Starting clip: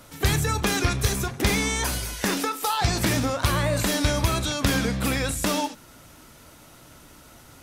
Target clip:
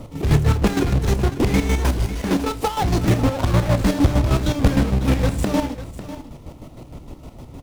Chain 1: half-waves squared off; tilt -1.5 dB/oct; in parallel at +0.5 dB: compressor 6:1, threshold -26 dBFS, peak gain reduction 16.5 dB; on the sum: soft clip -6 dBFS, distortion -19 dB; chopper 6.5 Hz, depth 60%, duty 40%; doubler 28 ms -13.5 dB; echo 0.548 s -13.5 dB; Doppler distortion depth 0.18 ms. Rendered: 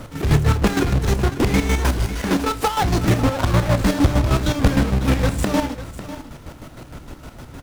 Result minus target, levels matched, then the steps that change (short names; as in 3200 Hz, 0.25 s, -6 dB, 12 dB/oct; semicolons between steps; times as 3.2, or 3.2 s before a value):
2000 Hz band +3.0 dB
add after compressor: LPF 1600 Hz 24 dB/oct